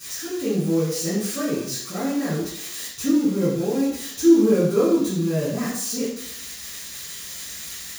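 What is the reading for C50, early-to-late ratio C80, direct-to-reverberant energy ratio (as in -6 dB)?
2.0 dB, 5.5 dB, -12.5 dB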